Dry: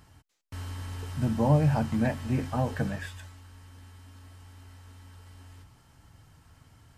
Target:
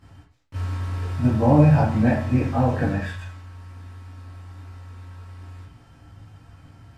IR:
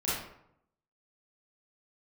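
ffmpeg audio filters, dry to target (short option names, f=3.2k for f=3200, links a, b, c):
-filter_complex "[0:a]lowpass=f=3.7k:p=1[a];[1:a]atrim=start_sample=2205,asetrate=79380,aresample=44100[b];[a][b]afir=irnorm=-1:irlink=0,volume=4.5dB"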